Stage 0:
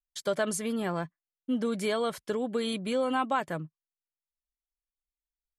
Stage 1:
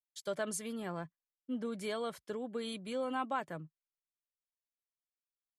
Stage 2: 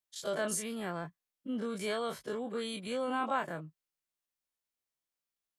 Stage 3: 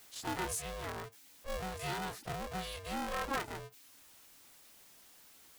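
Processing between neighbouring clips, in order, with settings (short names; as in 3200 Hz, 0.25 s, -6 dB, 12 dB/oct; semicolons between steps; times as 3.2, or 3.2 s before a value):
three-band expander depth 40%; gain -8.5 dB
spectral dilation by 60 ms
zero-crossing step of -45.5 dBFS; reverb removal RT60 0.57 s; polarity switched at an audio rate 280 Hz; gain -3.5 dB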